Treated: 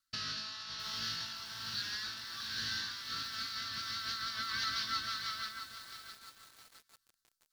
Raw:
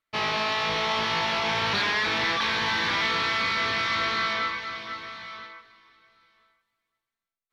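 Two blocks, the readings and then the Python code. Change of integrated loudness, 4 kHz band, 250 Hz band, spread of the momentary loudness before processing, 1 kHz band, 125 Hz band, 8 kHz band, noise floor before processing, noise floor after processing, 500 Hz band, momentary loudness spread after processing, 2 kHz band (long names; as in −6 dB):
−12.5 dB, −8.5 dB, −18.0 dB, 12 LU, −16.5 dB, −13.5 dB, −3.5 dB, below −85 dBFS, −83 dBFS, −28.5 dB, 13 LU, −16.0 dB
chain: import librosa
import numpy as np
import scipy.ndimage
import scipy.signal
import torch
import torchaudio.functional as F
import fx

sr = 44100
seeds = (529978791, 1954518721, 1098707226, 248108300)

y = fx.peak_eq(x, sr, hz=2700.0, db=10.5, octaves=0.28)
y = fx.rotary_switch(y, sr, hz=1.2, then_hz=6.3, switch_at_s=2.74)
y = fx.over_compress(y, sr, threshold_db=-35.0, ratio=-1.0)
y = fx.curve_eq(y, sr, hz=(120.0, 180.0, 270.0, 390.0, 890.0, 1500.0, 2400.0, 4600.0, 6700.0), db=(0, -9, -3, -19, -13, 4, -16, 12, 9))
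y = fx.echo_crushed(y, sr, ms=662, feedback_pct=55, bits=7, wet_db=-9)
y = y * 10.0 ** (-4.5 / 20.0)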